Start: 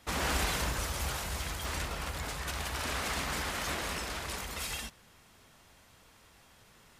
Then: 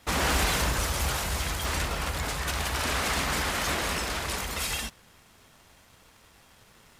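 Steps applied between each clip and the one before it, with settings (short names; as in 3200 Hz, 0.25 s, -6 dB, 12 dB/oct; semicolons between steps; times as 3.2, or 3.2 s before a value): sample leveller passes 1; gain +3 dB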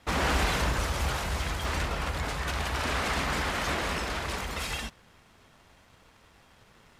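LPF 3400 Hz 6 dB/oct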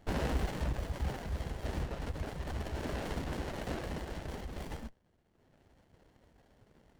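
reverb removal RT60 1.4 s; running maximum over 33 samples; gain -2 dB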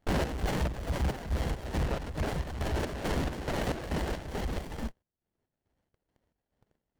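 gate -59 dBFS, range -7 dB; sample leveller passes 3; chopper 2.3 Hz, depth 60%, duty 55%; gain -1 dB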